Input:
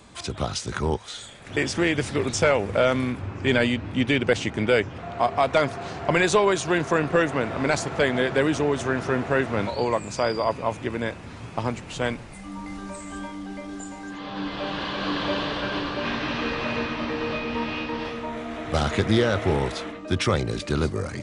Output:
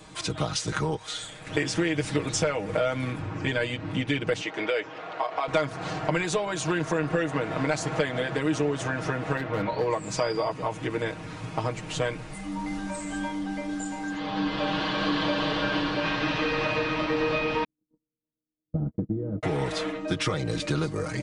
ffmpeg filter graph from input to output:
-filter_complex "[0:a]asettb=1/sr,asplit=3[s0][s1][s2];[s0]atrim=end=4.414[s3];[s1]atrim=start=4.41:end=5.48,asetpts=PTS-STARTPTS,afade=t=in:d=0.004:c=qsin,afade=t=out:st=1.066:d=0.004:c=qsin,acrossover=split=340 6400:gain=0.0794 1 0.0891[s4][s5][s6];[s4][s5][s6]amix=inputs=3:normalize=0,acompressor=threshold=0.0562:ratio=2:attack=3.2:release=140:knee=1:detection=peak[s7];[s2]atrim=start=5.476[s8];[s3][s7]acrossfade=d=0.004:c1=hsin:c2=qsin[s9];[s9][s8]acrossfade=d=0.004:c1=qsin:c2=hsin,asettb=1/sr,asplit=3[s10][s11][s12];[s10]atrim=end=9.374[s13];[s11]atrim=start=9.37:end=9.9,asetpts=PTS-STARTPTS,afade=t=in:d=0.004:c=qsin,afade=t=out:st=0.526:d=0.004:c=qsin,lowpass=2900,asoftclip=type=hard:threshold=0.133[s14];[s12]atrim=start=9.896[s15];[s13][s14]acrossfade=d=0.004:c1=hsin:c2=qsin[s16];[s16][s15]acrossfade=d=0.004:c1=qsin:c2=hsin,asettb=1/sr,asplit=3[s17][s18][s19];[s17]atrim=end=17.644[s20];[s18]atrim=start=17.64:end=19.43,asetpts=PTS-STARTPTS,afade=t=in:d=0.004:c=qsin,afade=t=out:st=1.786:d=0.004:c=qsin,agate=range=0.00112:threshold=0.0631:ratio=16:release=100:detection=peak,lowpass=f=250:t=q:w=2[s21];[s19]atrim=start=19.426[s22];[s20][s21]acrossfade=d=0.004:c1=hsin:c2=qsin[s23];[s23][s22]acrossfade=d=0.004:c1=qsin:c2=hsin,acompressor=threshold=0.0562:ratio=6,aecho=1:1:6.4:0.84"

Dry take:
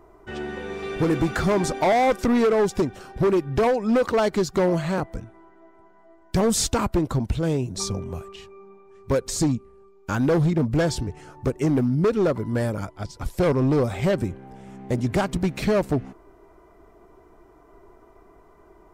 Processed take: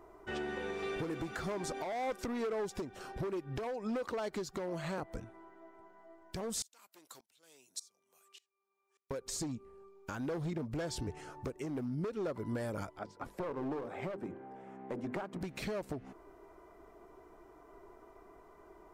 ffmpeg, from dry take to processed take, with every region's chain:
-filter_complex "[0:a]asettb=1/sr,asplit=3[s0][s1][s2];[s0]atrim=end=6.624[s3];[s1]atrim=start=6.62:end=9.11,asetpts=PTS-STARTPTS,afade=t=in:d=0.004:c=qsin,afade=t=out:st=2.486:d=0.004:c=qsin,highpass=160,aderivative,aeval=exprs='val(0)*pow(10,-25*if(lt(mod(-1.7*n/s,1),2*abs(-1.7)/1000),1-mod(-1.7*n/s,1)/(2*abs(-1.7)/1000),(mod(-1.7*n/s,1)-2*abs(-1.7)/1000)/(1-2*abs(-1.7)/1000))/20)':c=same[s4];[s2]atrim=start=9.106[s5];[s3][s4]acrossfade=d=0.004:c1=hsin:c2=qsin[s6];[s6][s5]acrossfade=d=0.004:c1=qsin:c2=hsin,asettb=1/sr,asplit=3[s7][s8][s9];[s7]atrim=end=12.994[s10];[s8]atrim=start=12.99:end=15.41,asetpts=PTS-STARTPTS,afade=t=in:d=0.004:c=qsin,afade=t=out:st=2.416:d=0.004:c=qsin,acrossover=split=160 2100:gain=0.126 1 0.158[s11][s12][s13];[s11][s12][s13]amix=inputs=3:normalize=0,bandreject=f=50:t=h:w=6,bandreject=f=100:t=h:w=6,bandreject=f=150:t=h:w=6,bandreject=f=200:t=h:w=6,bandreject=f=250:t=h:w=6,bandreject=f=300:t=h:w=6,bandreject=f=350:t=h:w=6,bandreject=f=400:t=h:w=6,bandreject=f=450:t=h:w=6,bandreject=f=500:t=h:w=6,aeval=exprs='clip(val(0),-1,0.0668)':c=same[s14];[s9]atrim=start=15.406[s15];[s10][s14]acrossfade=d=0.004:c1=hsin:c2=qsin[s16];[s16][s15]acrossfade=d=0.004:c1=qsin:c2=hsin,bass=f=250:g=-6,treble=f=4000:g=0,acompressor=threshold=0.0355:ratio=10,alimiter=level_in=1.19:limit=0.0631:level=0:latency=1:release=285,volume=0.841,volume=0.668"

